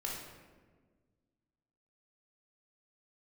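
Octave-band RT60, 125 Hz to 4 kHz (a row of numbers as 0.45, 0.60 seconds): 2.1, 2.1, 1.7, 1.3, 1.2, 0.80 seconds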